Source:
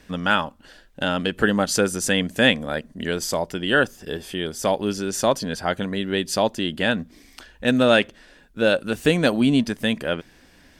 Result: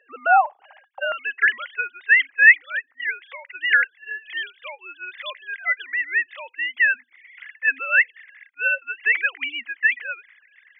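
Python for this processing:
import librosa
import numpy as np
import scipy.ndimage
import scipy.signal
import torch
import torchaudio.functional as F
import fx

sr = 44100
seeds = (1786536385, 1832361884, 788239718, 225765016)

y = fx.sine_speech(x, sr)
y = fx.highpass_res(y, sr, hz=fx.steps((0.0, 780.0), (1.12, 2000.0)), q=9.3)
y = F.gain(torch.from_numpy(y), -1.0).numpy()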